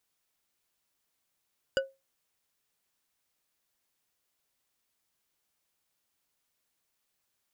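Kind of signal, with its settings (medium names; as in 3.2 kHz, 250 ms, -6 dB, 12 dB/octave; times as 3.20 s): glass hit bar, lowest mode 539 Hz, decay 0.23 s, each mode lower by 4 dB, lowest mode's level -21 dB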